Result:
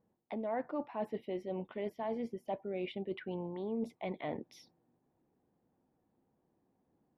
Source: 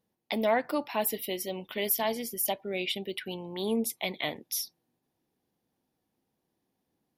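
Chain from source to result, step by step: LPF 1200 Hz 12 dB/oct; reverse; compressor 4:1, threshold -40 dBFS, peak gain reduction 15.5 dB; reverse; gain +4 dB

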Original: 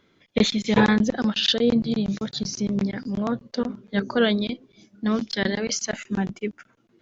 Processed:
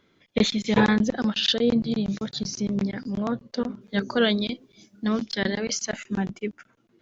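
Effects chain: 3.81–5.09 high shelf 4800 Hz +9.5 dB; gain -1.5 dB

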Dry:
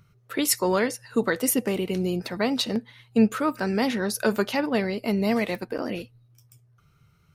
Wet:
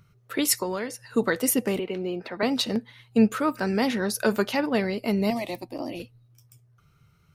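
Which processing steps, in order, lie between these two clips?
0.62–1.06 compressor 10:1, threshold -26 dBFS, peak gain reduction 8 dB; 1.79–2.43 three-band isolator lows -13 dB, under 270 Hz, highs -21 dB, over 3500 Hz; 5.3–6 fixed phaser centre 300 Hz, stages 8

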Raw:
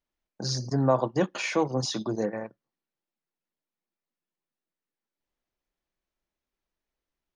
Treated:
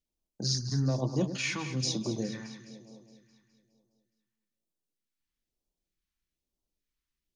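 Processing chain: dynamic EQ 490 Hz, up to -6 dB, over -34 dBFS, Q 0.74; echo with dull and thin repeats by turns 0.104 s, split 1300 Hz, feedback 76%, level -9 dB; phaser stages 2, 1.1 Hz, lowest notch 560–1700 Hz

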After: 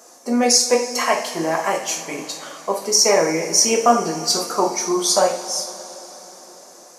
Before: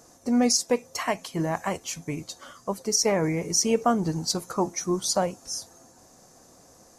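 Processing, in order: HPF 410 Hz 12 dB/oct; two-slope reverb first 0.45 s, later 4.4 s, from -18 dB, DRR -1 dB; gain +6 dB

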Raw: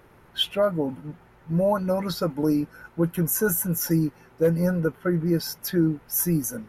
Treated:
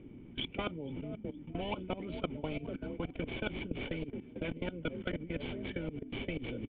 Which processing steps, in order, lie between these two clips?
median filter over 15 samples; frequency-shifting echo 0.464 s, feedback 53%, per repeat +40 Hz, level -19.5 dB; level quantiser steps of 22 dB; vocal tract filter i; spectral compressor 10:1; gain +2 dB

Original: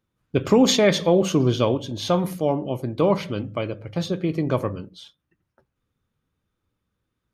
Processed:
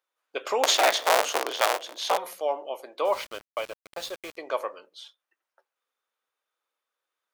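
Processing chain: 0.63–2.18 cycle switcher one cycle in 3, inverted; HPF 560 Hz 24 dB/oct; 3.05–4.37 sample gate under -37 dBFS; gain -1 dB

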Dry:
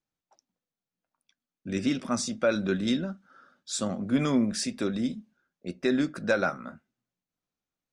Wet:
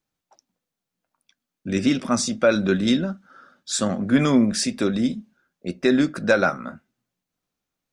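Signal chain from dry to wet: 3.71–4.21 bell 1700 Hz +8 dB 0.37 oct; gain +7 dB

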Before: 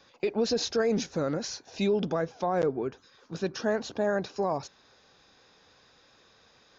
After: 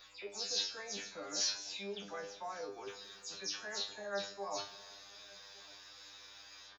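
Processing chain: spectral delay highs early, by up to 0.141 s; reverse; compressor, threshold -38 dBFS, peak gain reduction 15 dB; reverse; tilt +3 dB/oct; on a send: echo 1.158 s -23.5 dB; on the sum: hum 60 Hz, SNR 27 dB; bell 200 Hz -9.5 dB 2 oct; resonator 100 Hz, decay 0.28 s, harmonics all, mix 100%; shoebox room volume 3100 m³, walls mixed, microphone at 0.47 m; gain +11.5 dB

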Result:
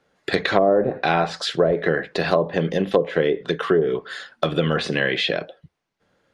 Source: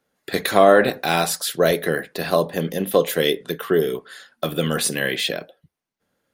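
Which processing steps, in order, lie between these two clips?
treble ducked by the level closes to 600 Hz, closed at -11.5 dBFS; bell 240 Hz -5 dB 0.41 oct; compressor 2:1, threshold -29 dBFS, peak gain reduction 10 dB; air absorption 87 m; gain +8.5 dB

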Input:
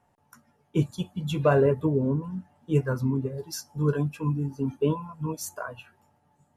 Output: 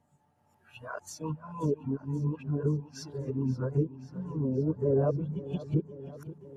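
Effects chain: whole clip reversed; treble ducked by the level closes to 560 Hz, closed at -21.5 dBFS; warbling echo 0.531 s, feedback 66%, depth 56 cents, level -16 dB; gain -4 dB

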